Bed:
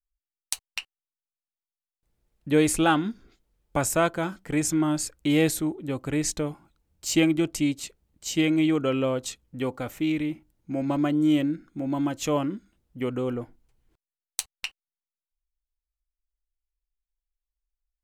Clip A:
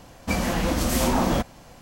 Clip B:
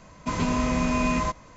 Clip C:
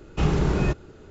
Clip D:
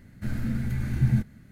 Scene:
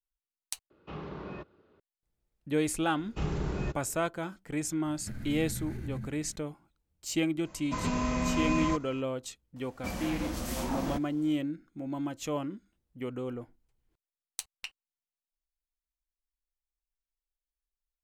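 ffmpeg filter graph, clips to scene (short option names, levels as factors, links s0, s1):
-filter_complex "[3:a]asplit=2[s0][s1];[0:a]volume=0.398[s2];[s0]highpass=110,equalizer=f=130:t=q:w=4:g=-8,equalizer=f=560:t=q:w=4:g=4,equalizer=f=1100:t=q:w=4:g=7,lowpass=f=4200:w=0.5412,lowpass=f=4200:w=1.3066[s3];[4:a]acompressor=threshold=0.0251:ratio=6:attack=3.2:release=140:knee=1:detection=peak[s4];[s2]asplit=2[s5][s6];[s5]atrim=end=0.704[s7];[s3]atrim=end=1.1,asetpts=PTS-STARTPTS,volume=0.15[s8];[s6]atrim=start=1.796[s9];[s1]atrim=end=1.1,asetpts=PTS-STARTPTS,volume=0.299,afade=t=in:d=0.004:c=hsin,afade=t=out:st=1.096:d=0.004:c=hsin,adelay=2990[s10];[s4]atrim=end=1.51,asetpts=PTS-STARTPTS,volume=0.708,afade=t=in:d=0.004:c=hsin,afade=t=out:st=1.506:d=0.004:c=hsin,adelay=213885S[s11];[2:a]atrim=end=1.56,asetpts=PTS-STARTPTS,volume=0.531,afade=t=in:d=0.004:c=hsin,afade=t=out:st=1.556:d=0.004:c=hsin,adelay=7450[s12];[1:a]atrim=end=1.81,asetpts=PTS-STARTPTS,volume=0.251,afade=t=in:d=0.004:c=hsin,afade=t=out:st=1.806:d=0.004:c=hsin,adelay=9560[s13];[s7][s8]acrossfade=d=0.004:c1=hsin:c2=hsin[s14];[s14][s9]acrossfade=d=0.004:c1=hsin:c2=hsin[s15];[s15][s10][s11][s12][s13]amix=inputs=5:normalize=0"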